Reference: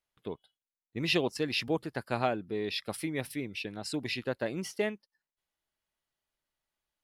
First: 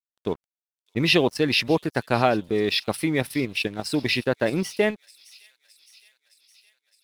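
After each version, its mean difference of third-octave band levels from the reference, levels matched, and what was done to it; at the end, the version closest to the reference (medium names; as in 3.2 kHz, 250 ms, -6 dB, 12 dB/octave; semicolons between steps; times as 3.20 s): 3.0 dB: band-stop 7.1 kHz, Q 6.8; in parallel at +1 dB: level held to a coarse grid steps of 19 dB; on the sum: crossover distortion -51.5 dBFS; feedback echo behind a high-pass 614 ms, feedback 64%, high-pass 5.1 kHz, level -13.5 dB; trim +7 dB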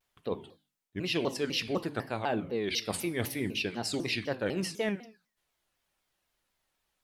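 6.5 dB: hum notches 50/100/150/200/250/300 Hz; reverse; compression 6:1, threshold -37 dBFS, peak gain reduction 13.5 dB; reverse; gated-style reverb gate 240 ms falling, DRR 11 dB; vibrato with a chosen wave saw down 4 Hz, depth 250 cents; trim +8.5 dB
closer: first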